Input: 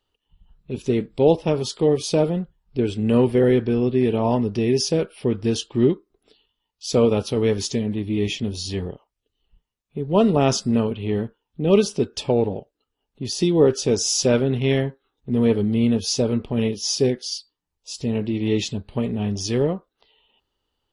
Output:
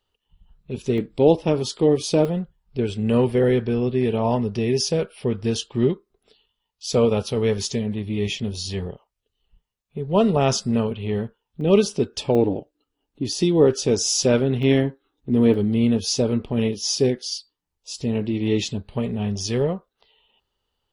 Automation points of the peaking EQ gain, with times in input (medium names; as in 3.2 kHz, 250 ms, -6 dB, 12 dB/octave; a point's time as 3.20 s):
peaking EQ 300 Hz 0.35 oct
-5.5 dB
from 0.98 s +2.5 dB
from 2.25 s -9 dB
from 11.61 s -1 dB
from 12.35 s +11 dB
from 13.33 s 0 dB
from 14.63 s +9.5 dB
from 15.54 s 0 dB
from 18.86 s -8 dB